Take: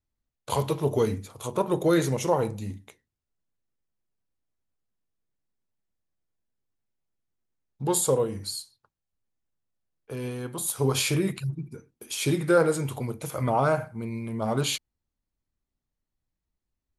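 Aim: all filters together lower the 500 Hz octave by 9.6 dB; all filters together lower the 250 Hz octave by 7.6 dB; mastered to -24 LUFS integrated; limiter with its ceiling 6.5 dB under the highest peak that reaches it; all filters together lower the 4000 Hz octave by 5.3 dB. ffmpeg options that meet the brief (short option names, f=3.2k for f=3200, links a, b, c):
-af "equalizer=f=250:t=o:g=-8.5,equalizer=f=500:t=o:g=-9,equalizer=f=4k:t=o:g=-6.5,volume=9.5dB,alimiter=limit=-11.5dB:level=0:latency=1"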